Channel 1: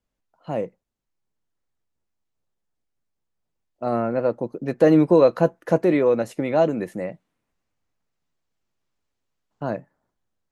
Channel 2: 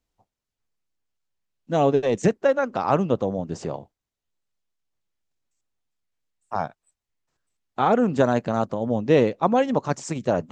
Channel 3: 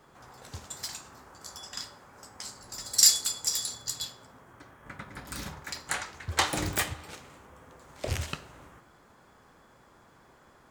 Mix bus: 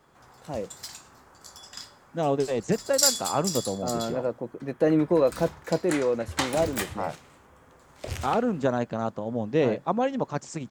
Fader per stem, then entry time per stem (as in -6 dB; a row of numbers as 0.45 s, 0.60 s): -6.5 dB, -5.5 dB, -2.5 dB; 0.00 s, 0.45 s, 0.00 s